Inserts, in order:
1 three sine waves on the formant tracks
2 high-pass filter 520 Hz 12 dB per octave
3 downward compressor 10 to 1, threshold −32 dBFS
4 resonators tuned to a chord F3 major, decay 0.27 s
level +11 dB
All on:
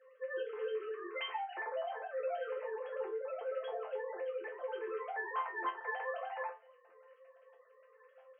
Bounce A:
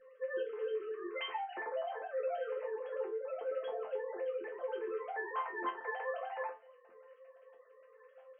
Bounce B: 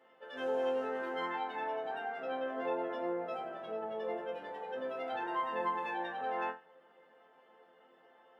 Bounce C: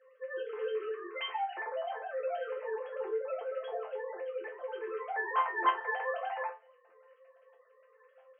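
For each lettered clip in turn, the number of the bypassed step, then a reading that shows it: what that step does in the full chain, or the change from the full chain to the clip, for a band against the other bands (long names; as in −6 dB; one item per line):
2, 250 Hz band +5.0 dB
1, 250 Hz band +11.5 dB
3, average gain reduction 2.5 dB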